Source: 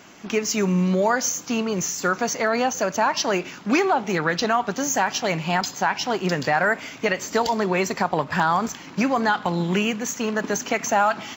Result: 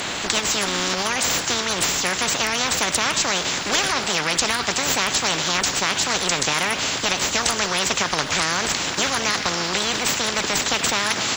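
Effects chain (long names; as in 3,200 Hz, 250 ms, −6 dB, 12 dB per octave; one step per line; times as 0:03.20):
formants moved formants +5 semitones
every bin compressed towards the loudest bin 4 to 1
level +4.5 dB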